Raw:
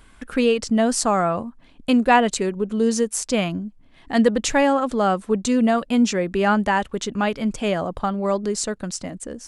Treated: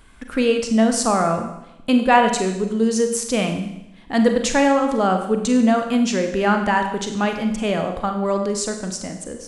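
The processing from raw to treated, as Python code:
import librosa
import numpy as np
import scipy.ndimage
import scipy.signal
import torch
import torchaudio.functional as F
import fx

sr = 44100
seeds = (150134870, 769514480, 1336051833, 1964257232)

y = fx.rev_schroeder(x, sr, rt60_s=0.87, comb_ms=32, drr_db=5.0)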